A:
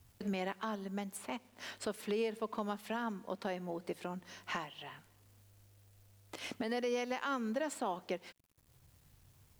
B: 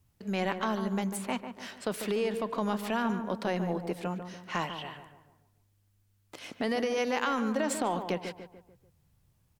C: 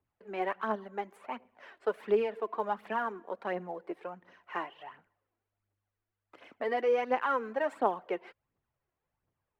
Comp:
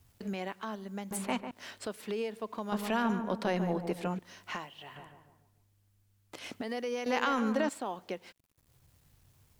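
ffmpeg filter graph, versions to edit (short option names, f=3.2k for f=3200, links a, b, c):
-filter_complex "[1:a]asplit=4[a][b][c][d];[0:a]asplit=5[e][f][g][h][i];[e]atrim=end=1.112[j];[a]atrim=start=1.108:end=1.512[k];[f]atrim=start=1.508:end=2.722[l];[b]atrim=start=2.718:end=4.192[m];[g]atrim=start=4.188:end=4.962[n];[c]atrim=start=4.958:end=6.462[o];[h]atrim=start=6.458:end=7.062[p];[d]atrim=start=7.058:end=7.692[q];[i]atrim=start=7.688[r];[j][k]acrossfade=d=0.004:c1=hsin:c2=hsin[s];[s][l]acrossfade=d=0.004:c1=hsin:c2=hsin[t];[t][m]acrossfade=d=0.004:c1=hsin:c2=hsin[u];[u][n]acrossfade=d=0.004:c1=hsin:c2=hsin[v];[v][o]acrossfade=d=0.004:c1=hsin:c2=hsin[w];[w][p]acrossfade=d=0.004:c1=hsin:c2=hsin[x];[x][q]acrossfade=d=0.004:c1=hsin:c2=hsin[y];[y][r]acrossfade=d=0.004:c1=hsin:c2=hsin"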